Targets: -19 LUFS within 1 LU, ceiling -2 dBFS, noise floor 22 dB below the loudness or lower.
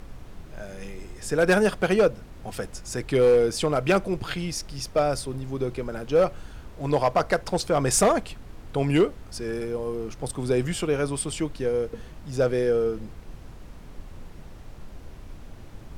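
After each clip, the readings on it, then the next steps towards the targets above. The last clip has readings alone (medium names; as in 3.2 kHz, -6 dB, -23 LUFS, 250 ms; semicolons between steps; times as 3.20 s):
clipped samples 0.5%; clipping level -13.0 dBFS; noise floor -44 dBFS; noise floor target -47 dBFS; loudness -25.0 LUFS; peak level -13.0 dBFS; loudness target -19.0 LUFS
-> clip repair -13 dBFS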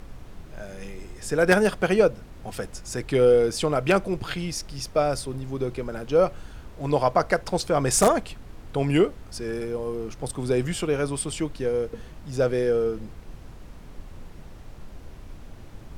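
clipped samples 0.0%; noise floor -44 dBFS; noise floor target -47 dBFS
-> noise print and reduce 6 dB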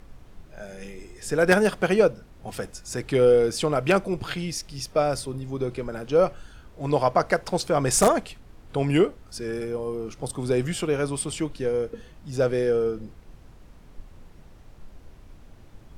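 noise floor -49 dBFS; loudness -24.5 LUFS; peak level -4.0 dBFS; loudness target -19.0 LUFS
-> trim +5.5 dB; peak limiter -2 dBFS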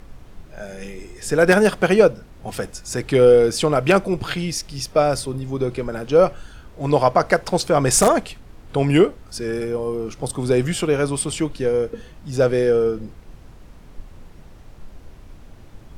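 loudness -19.5 LUFS; peak level -2.0 dBFS; noise floor -44 dBFS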